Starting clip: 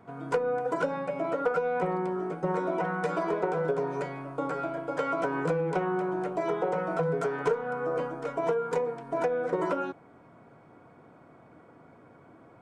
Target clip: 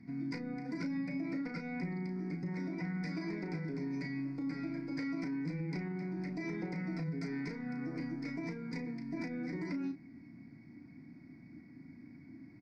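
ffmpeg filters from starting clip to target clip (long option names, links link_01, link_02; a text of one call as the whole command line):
ffmpeg -i in.wav -filter_complex "[0:a]firequalizer=gain_entry='entry(120,0);entry(270,8);entry(450,-23);entry(850,-18);entry(1300,-23);entry(2100,7);entry(3000,-24);entry(4800,10);entry(7000,-15)':delay=0.05:min_phase=1,alimiter=level_in=6.5dB:limit=-24dB:level=0:latency=1:release=54,volume=-6.5dB,asplit=2[link_01][link_02];[link_02]adelay=34,volume=-8dB[link_03];[link_01][link_03]amix=inputs=2:normalize=0" out.wav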